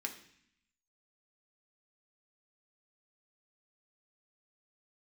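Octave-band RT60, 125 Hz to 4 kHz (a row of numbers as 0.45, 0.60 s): 0.95, 0.95, 0.60, 0.65, 0.90, 0.80 s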